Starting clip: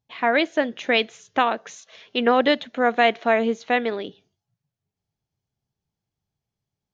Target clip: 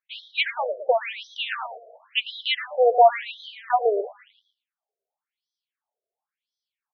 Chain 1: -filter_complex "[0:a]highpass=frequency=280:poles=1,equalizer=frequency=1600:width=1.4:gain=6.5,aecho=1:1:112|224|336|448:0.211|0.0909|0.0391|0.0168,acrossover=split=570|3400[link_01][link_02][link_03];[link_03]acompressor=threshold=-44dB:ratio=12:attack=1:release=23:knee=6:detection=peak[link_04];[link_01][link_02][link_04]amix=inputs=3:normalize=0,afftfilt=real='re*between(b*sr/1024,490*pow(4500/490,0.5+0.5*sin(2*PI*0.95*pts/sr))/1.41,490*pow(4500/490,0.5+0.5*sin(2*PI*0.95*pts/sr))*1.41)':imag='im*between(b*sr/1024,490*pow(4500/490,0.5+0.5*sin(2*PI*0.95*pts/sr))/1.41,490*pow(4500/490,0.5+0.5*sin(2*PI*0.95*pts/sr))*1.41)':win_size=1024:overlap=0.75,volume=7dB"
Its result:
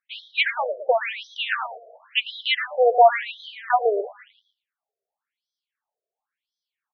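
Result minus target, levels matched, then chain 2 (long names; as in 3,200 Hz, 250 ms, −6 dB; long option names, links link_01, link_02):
2,000 Hz band +2.5 dB
-filter_complex "[0:a]highpass=frequency=280:poles=1,aecho=1:1:112|224|336|448:0.211|0.0909|0.0391|0.0168,acrossover=split=570|3400[link_01][link_02][link_03];[link_03]acompressor=threshold=-44dB:ratio=12:attack=1:release=23:knee=6:detection=peak[link_04];[link_01][link_02][link_04]amix=inputs=3:normalize=0,afftfilt=real='re*between(b*sr/1024,490*pow(4500/490,0.5+0.5*sin(2*PI*0.95*pts/sr))/1.41,490*pow(4500/490,0.5+0.5*sin(2*PI*0.95*pts/sr))*1.41)':imag='im*between(b*sr/1024,490*pow(4500/490,0.5+0.5*sin(2*PI*0.95*pts/sr))/1.41,490*pow(4500/490,0.5+0.5*sin(2*PI*0.95*pts/sr))*1.41)':win_size=1024:overlap=0.75,volume=7dB"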